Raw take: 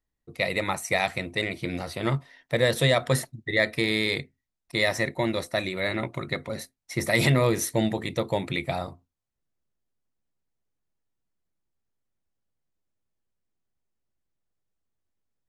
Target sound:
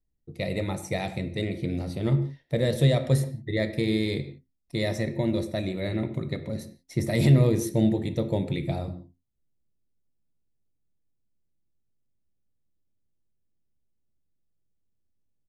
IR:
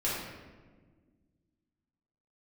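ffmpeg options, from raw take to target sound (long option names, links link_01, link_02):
-filter_complex "[0:a]firequalizer=gain_entry='entry(110,0);entry(1100,-18);entry(3700,-12)':delay=0.05:min_phase=1,asplit=2[link_01][link_02];[1:a]atrim=start_sample=2205,afade=type=out:start_time=0.23:duration=0.01,atrim=end_sample=10584[link_03];[link_02][link_03]afir=irnorm=-1:irlink=0,volume=-14.5dB[link_04];[link_01][link_04]amix=inputs=2:normalize=0,volume=3.5dB"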